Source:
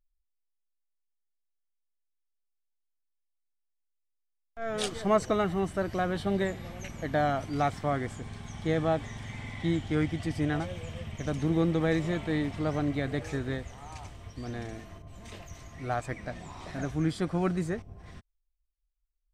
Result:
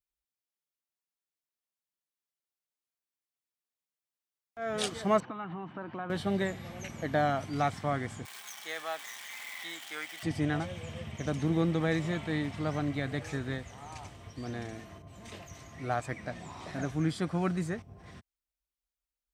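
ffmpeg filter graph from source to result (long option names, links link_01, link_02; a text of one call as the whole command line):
ffmpeg -i in.wav -filter_complex "[0:a]asettb=1/sr,asplit=3[link_01][link_02][link_03];[link_01]atrim=end=5.204[link_04];[link_02]atrim=start=5.2:end=6.1,asetpts=PTS-STARTPTS,afade=type=in:duration=0.004:curve=qsin,afade=type=out:start_time=0.896:duration=0.004:curve=qsin,acompressor=threshold=-31dB:ratio=4:attack=3.2:release=140:knee=1:detection=peak,highpass=frequency=140:width=0.5412,highpass=frequency=140:width=1.3066,equalizer=frequency=190:width_type=q:width=4:gain=-4,equalizer=frequency=430:width_type=q:width=4:gain=-10,equalizer=frequency=620:width_type=q:width=4:gain=-8,equalizer=frequency=930:width_type=q:width=4:gain=7,equalizer=frequency=2000:width_type=q:width=4:gain=-8,lowpass=frequency=2700:width=0.5412,lowpass=frequency=2700:width=1.3066[link_05];[link_03]atrim=start=6.096[link_06];[link_04][link_05]acrossfade=duration=0.004:curve1=hsin:curve2=qsin[link_07];[link_07][link_06]acrossfade=duration=0.004:curve1=qsin:curve2=hsin,asettb=1/sr,asplit=3[link_08][link_09][link_10];[link_08]atrim=end=8.254[link_11];[link_09]atrim=start=8.25:end=10.23,asetpts=PTS-STARTPTS,afade=type=in:duration=0.004:curve=qsin,afade=type=out:start_time=1.976:duration=0.004:curve=qsin,aeval=exprs='val(0)+0.5*0.00794*sgn(val(0))':channel_layout=same,highpass=1200,highshelf=frequency=8800:gain=9.5[link_12];[link_10]atrim=start=10.226[link_13];[link_11][link_12]acrossfade=duration=0.004:curve1=hsin:curve2=qsin[link_14];[link_14][link_13]acrossfade=duration=0.004:curve1=qsin:curve2=hsin,highpass=95,adynamicequalizer=threshold=0.00794:dfrequency=410:dqfactor=0.92:tfrequency=410:tqfactor=0.92:attack=5:release=100:ratio=0.375:range=2.5:mode=cutabove:tftype=bell" out.wav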